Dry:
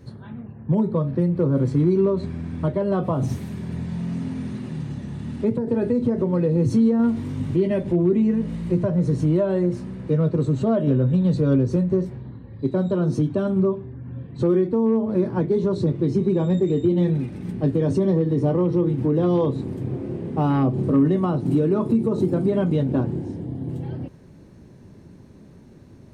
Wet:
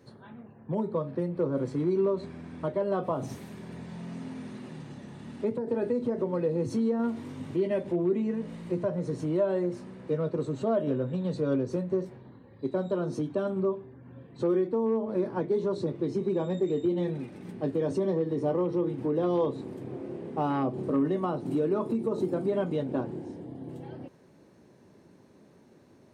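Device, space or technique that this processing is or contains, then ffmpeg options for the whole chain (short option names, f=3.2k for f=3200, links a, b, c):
filter by subtraction: -filter_complex "[0:a]asplit=2[a][b];[b]lowpass=580,volume=-1[c];[a][c]amix=inputs=2:normalize=0,volume=-5.5dB"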